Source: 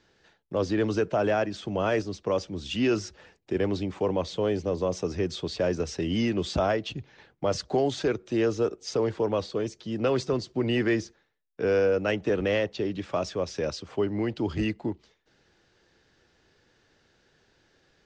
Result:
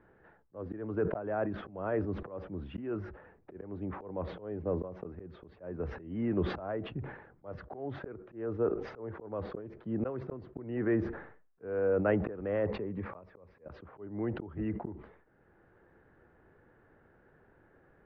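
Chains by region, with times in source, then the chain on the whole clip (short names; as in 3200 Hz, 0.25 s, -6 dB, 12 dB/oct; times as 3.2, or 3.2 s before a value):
12.67–13.66 compressor 2.5:1, threshold -39 dBFS + ripple EQ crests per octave 0.9, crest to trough 6 dB
whole clip: LPF 1600 Hz 24 dB/oct; auto swell 0.8 s; sustainer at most 78 dB/s; gain +3.5 dB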